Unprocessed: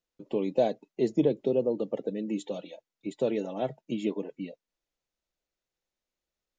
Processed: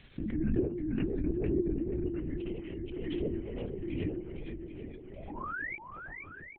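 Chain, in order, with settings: gliding pitch shift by -7.5 st ending unshifted; notches 50/100/150/200/250/300/350/400 Hz; comb 6 ms, depth 42%; painted sound rise, 5.17–5.77, 600–2400 Hz -29 dBFS; treble ducked by the level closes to 720 Hz, closed at -24 dBFS; fixed phaser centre 300 Hz, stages 4; swung echo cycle 0.784 s, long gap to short 1.5:1, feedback 46%, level -7 dB; LPC vocoder at 8 kHz whisper; backwards sustainer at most 25 dB/s; gain -4 dB

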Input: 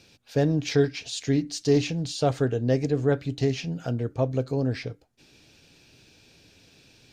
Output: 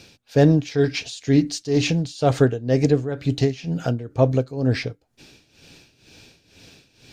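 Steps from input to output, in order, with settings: tremolo 2.1 Hz, depth 82%; gain +9 dB

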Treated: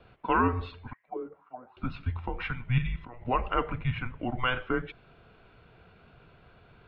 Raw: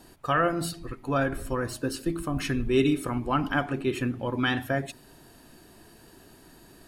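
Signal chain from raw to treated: mistuned SSB -250 Hz 290–3400 Hz; 0.93–1.77 auto-wah 390–2300 Hz, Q 6.9, down, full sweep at -23.5 dBFS; 2.78–3.25 level quantiser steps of 15 dB

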